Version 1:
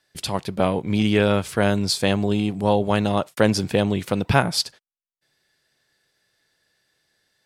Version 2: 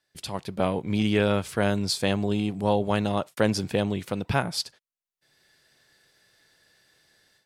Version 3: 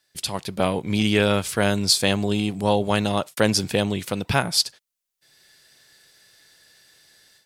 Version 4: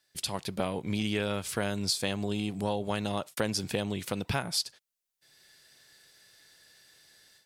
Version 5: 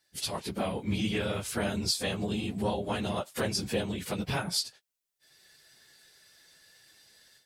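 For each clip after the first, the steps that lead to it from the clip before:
AGC gain up to 14 dB; gain -8 dB
high shelf 2700 Hz +9 dB; gain +2.5 dB
compressor 3:1, threshold -24 dBFS, peak gain reduction 8.5 dB; gain -4 dB
phase scrambler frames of 50 ms

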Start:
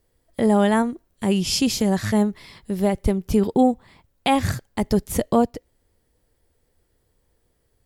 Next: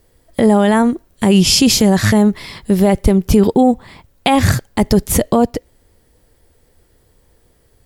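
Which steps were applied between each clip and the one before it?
maximiser +13.5 dB; gain -1 dB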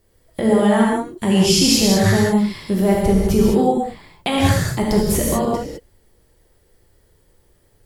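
non-linear reverb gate 0.23 s flat, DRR -3.5 dB; gain -8 dB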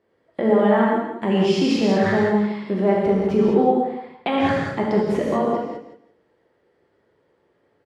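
BPF 240–2100 Hz; feedback echo 0.168 s, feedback 19%, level -10.5 dB

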